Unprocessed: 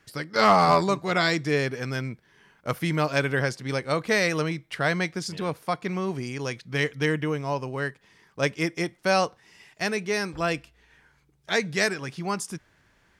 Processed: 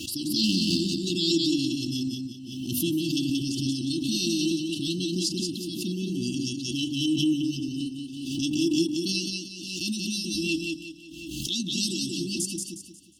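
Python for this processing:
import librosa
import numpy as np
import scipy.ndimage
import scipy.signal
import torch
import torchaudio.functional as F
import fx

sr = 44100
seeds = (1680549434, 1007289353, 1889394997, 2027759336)

p1 = scipy.signal.sosfilt(scipy.signal.butter(2, 110.0, 'highpass', fs=sr, output='sos'), x)
p2 = fx.hum_notches(p1, sr, base_hz=50, count=6)
p3 = p2 + 0.69 * np.pad(p2, (int(3.3 * sr / 1000.0), 0))[:len(p2)]
p4 = fx.level_steps(p3, sr, step_db=17)
p5 = p3 + F.gain(torch.from_numpy(p4), 2.0).numpy()
p6 = fx.tremolo_shape(p5, sr, shape='saw_down', hz=8.2, depth_pct=35)
p7 = fx.brickwall_bandstop(p6, sr, low_hz=360.0, high_hz=2600.0)
p8 = p7 + fx.echo_feedback(p7, sr, ms=180, feedback_pct=35, wet_db=-4.0, dry=0)
y = fx.pre_swell(p8, sr, db_per_s=38.0)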